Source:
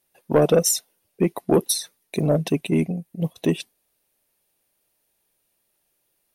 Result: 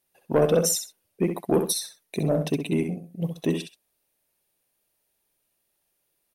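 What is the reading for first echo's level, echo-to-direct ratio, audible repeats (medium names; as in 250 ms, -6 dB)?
-7.0 dB, -7.0 dB, 2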